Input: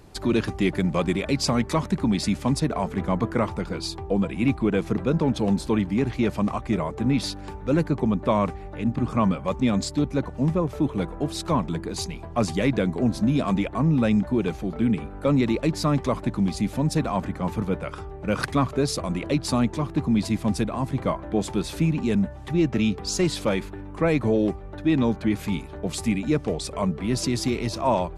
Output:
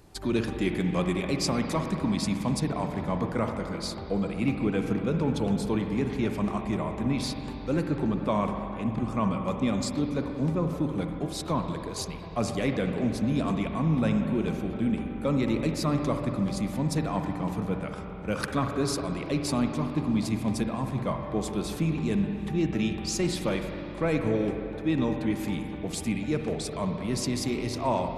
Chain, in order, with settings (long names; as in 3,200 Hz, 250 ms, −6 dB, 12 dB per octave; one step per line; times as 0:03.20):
high-shelf EQ 7,000 Hz +5 dB
convolution reverb RT60 3.1 s, pre-delay 44 ms, DRR 4 dB
level −5.5 dB